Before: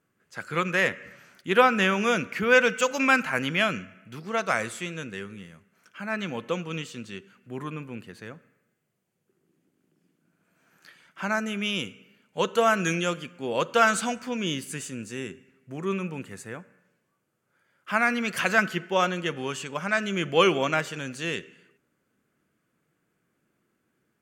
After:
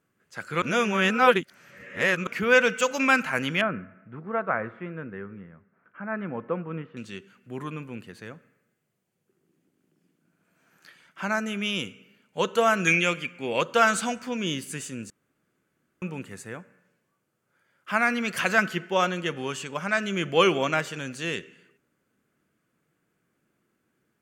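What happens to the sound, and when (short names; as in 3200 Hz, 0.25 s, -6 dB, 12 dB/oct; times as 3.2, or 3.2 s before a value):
0.62–2.27 reverse
3.61–6.97 LPF 1700 Hz 24 dB/oct
12.87–13.61 bell 2300 Hz +13.5 dB 0.45 oct
15.1–16.02 room tone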